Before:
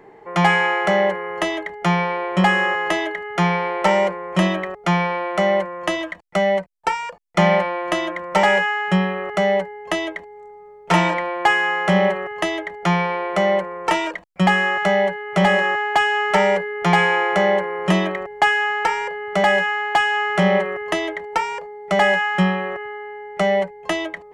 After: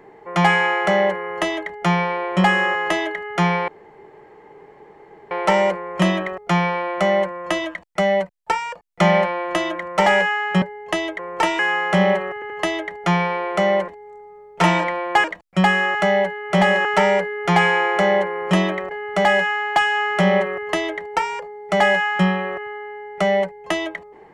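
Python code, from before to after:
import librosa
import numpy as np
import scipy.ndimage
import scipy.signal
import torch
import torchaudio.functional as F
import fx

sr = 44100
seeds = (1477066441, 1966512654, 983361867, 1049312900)

y = fx.edit(x, sr, fx.insert_room_tone(at_s=3.68, length_s=1.63),
    fx.cut(start_s=8.99, length_s=0.62),
    fx.swap(start_s=10.18, length_s=1.36, other_s=13.67, other_length_s=0.4),
    fx.stutter(start_s=12.29, slice_s=0.08, count=3),
    fx.cut(start_s=15.68, length_s=0.54),
    fx.cut(start_s=18.28, length_s=0.82), tone=tone)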